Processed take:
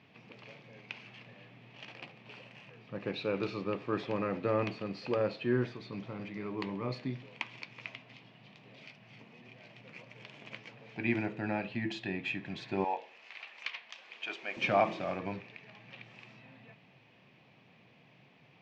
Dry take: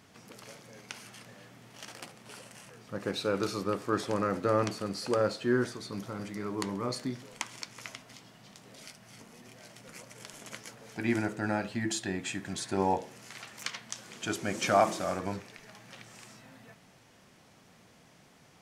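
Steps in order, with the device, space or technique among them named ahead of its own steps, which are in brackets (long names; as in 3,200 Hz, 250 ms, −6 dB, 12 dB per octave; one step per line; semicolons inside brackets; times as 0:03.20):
guitar cabinet (loudspeaker in its box 110–3,800 Hz, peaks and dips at 130 Hz +8 dB, 1,400 Hz −7 dB, 2,500 Hz +9 dB)
0:12.84–0:14.57: high-pass filter 640 Hz 12 dB per octave
level −3 dB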